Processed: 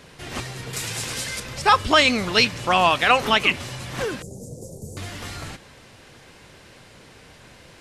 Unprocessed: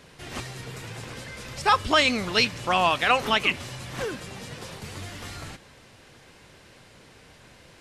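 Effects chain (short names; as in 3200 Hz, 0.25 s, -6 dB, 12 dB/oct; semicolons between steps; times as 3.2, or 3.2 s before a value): 0.73–1.4 bell 9500 Hz +14 dB 2.9 oct; 4.22–4.97 elliptic band-stop 560–6800 Hz, stop band 60 dB; gain +4 dB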